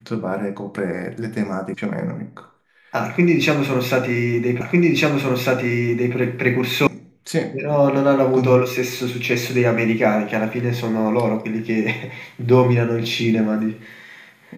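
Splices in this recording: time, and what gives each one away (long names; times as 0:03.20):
0:01.74: cut off before it has died away
0:04.61: the same again, the last 1.55 s
0:06.87: cut off before it has died away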